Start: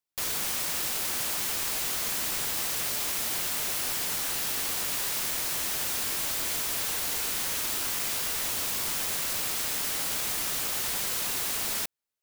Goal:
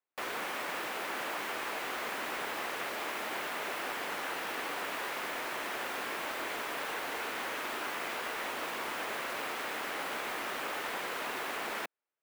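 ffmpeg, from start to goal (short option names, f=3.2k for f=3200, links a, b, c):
-filter_complex "[0:a]acrossover=split=250 2500:gain=0.0708 1 0.0794[a][b][c];[a][b][c]amix=inputs=3:normalize=0,volume=3.5dB"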